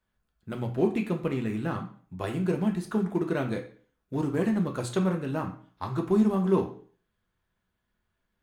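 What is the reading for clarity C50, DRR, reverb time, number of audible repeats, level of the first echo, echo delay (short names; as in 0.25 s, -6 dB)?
10.0 dB, 2.0 dB, 0.45 s, none, none, none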